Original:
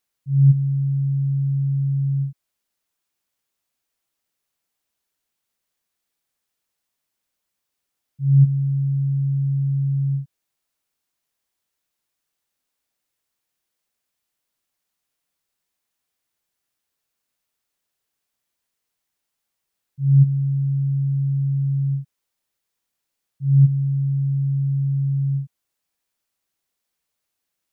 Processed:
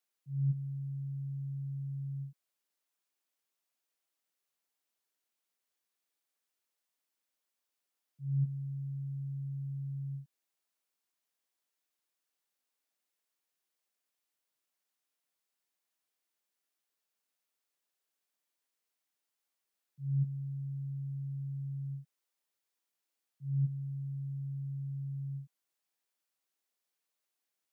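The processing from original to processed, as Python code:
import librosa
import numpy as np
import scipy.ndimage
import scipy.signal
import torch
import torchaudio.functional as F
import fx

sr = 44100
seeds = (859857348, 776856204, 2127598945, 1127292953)

y = scipy.signal.sosfilt(scipy.signal.butter(2, 250.0, 'highpass', fs=sr, output='sos'), x)
y = y * librosa.db_to_amplitude(-7.0)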